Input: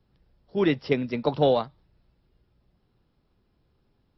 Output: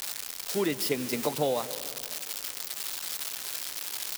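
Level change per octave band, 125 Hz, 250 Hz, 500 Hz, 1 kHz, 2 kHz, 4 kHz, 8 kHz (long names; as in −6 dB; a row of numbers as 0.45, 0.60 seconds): −8.5 dB, −6.0 dB, −5.5 dB, −4.5 dB, −0.5 dB, +5.5 dB, can't be measured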